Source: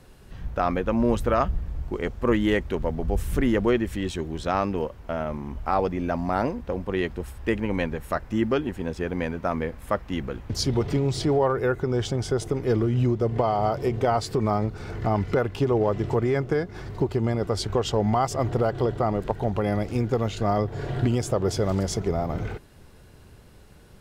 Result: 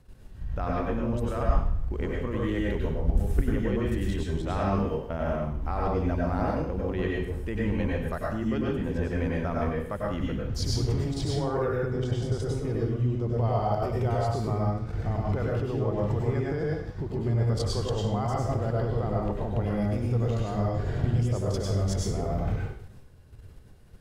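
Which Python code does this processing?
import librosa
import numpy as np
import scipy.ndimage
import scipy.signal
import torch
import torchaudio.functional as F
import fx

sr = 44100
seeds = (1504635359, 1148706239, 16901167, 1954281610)

y = fx.low_shelf(x, sr, hz=140.0, db=12.0)
y = fx.level_steps(y, sr, step_db=13)
y = fx.rev_plate(y, sr, seeds[0], rt60_s=0.61, hf_ratio=0.95, predelay_ms=85, drr_db=-3.5)
y = y * librosa.db_to_amplitude(-5.0)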